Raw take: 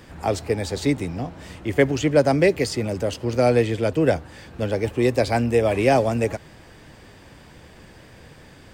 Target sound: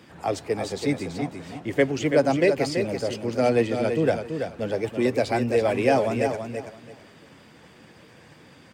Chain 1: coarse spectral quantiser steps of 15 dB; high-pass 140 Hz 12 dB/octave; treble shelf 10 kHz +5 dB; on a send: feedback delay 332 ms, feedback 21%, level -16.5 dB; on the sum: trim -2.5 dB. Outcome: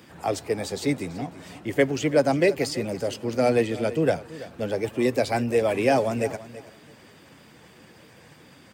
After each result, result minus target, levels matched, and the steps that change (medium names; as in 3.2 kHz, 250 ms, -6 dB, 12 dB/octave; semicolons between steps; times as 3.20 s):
echo-to-direct -9.5 dB; 8 kHz band +3.0 dB
change: feedback delay 332 ms, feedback 21%, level -7 dB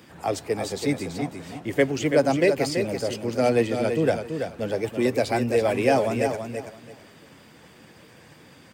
8 kHz band +3.0 dB
change: treble shelf 10 kHz -5.5 dB